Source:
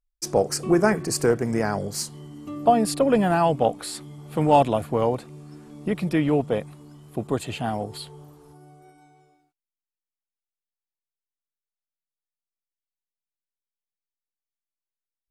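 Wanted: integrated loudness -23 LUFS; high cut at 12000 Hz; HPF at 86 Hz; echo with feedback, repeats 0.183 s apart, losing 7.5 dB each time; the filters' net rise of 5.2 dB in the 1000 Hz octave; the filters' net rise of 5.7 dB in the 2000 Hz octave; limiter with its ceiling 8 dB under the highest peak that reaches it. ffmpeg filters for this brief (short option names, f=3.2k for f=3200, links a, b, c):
-af "highpass=86,lowpass=12k,equalizer=f=1k:t=o:g=6.5,equalizer=f=2k:t=o:g=5,alimiter=limit=-9dB:level=0:latency=1,aecho=1:1:183|366|549|732|915:0.422|0.177|0.0744|0.0312|0.0131,volume=-0.5dB"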